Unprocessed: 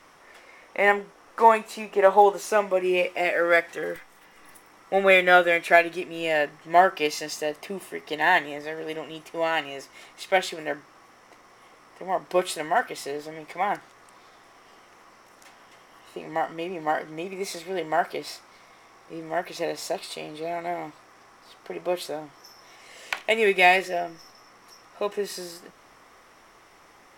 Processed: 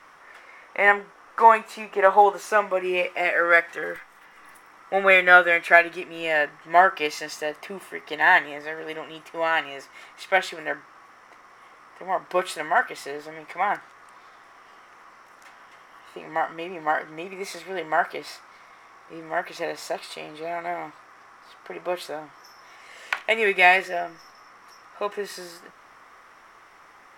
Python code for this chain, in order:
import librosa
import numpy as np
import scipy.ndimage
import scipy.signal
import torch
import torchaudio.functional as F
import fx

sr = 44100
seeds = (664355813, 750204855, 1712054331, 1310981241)

y = fx.peak_eq(x, sr, hz=1400.0, db=10.0, octaves=1.7)
y = y * 10.0 ** (-4.0 / 20.0)